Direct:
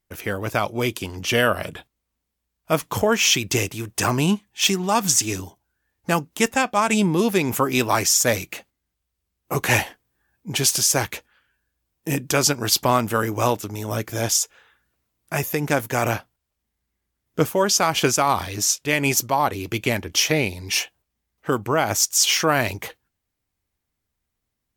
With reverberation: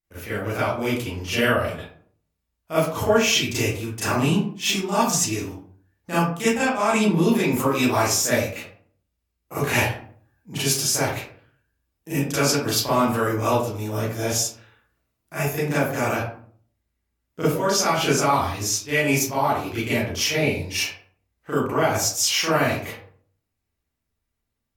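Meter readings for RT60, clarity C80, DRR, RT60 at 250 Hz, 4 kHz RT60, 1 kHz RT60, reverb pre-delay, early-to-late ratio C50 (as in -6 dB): 0.50 s, 6.0 dB, -12.0 dB, 0.65 s, 0.30 s, 0.50 s, 31 ms, 0.0 dB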